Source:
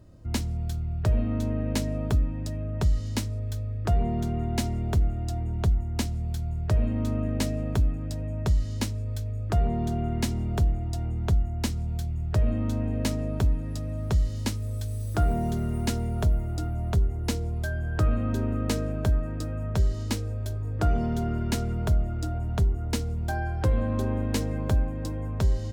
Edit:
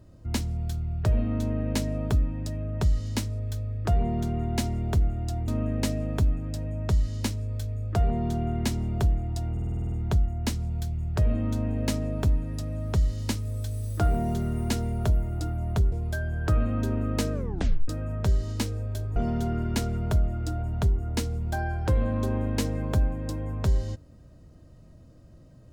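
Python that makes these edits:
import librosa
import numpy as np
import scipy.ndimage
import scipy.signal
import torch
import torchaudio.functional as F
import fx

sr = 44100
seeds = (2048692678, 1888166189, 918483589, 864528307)

y = fx.edit(x, sr, fx.cut(start_s=5.48, length_s=1.57),
    fx.stutter(start_s=11.09, slice_s=0.05, count=9),
    fx.cut(start_s=17.09, length_s=0.34),
    fx.tape_stop(start_s=18.84, length_s=0.55),
    fx.cut(start_s=20.67, length_s=0.25), tone=tone)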